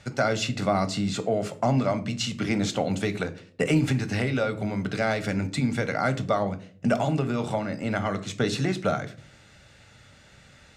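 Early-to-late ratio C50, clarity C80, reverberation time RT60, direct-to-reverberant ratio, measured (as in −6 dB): 16.5 dB, 21.0 dB, 0.50 s, 9.0 dB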